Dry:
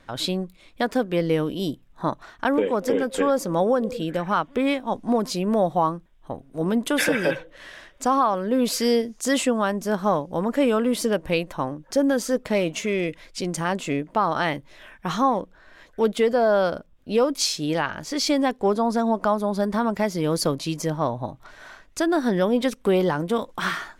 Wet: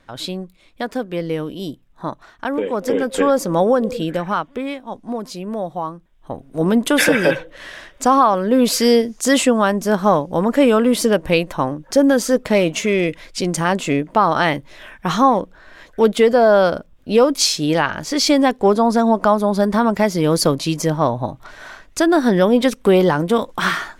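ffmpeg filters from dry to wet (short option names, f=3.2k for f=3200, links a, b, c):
-af "volume=16.5dB,afade=t=in:st=2.52:d=0.7:silence=0.473151,afade=t=out:st=4.02:d=0.65:silence=0.334965,afade=t=in:st=5.94:d=0.65:silence=0.281838"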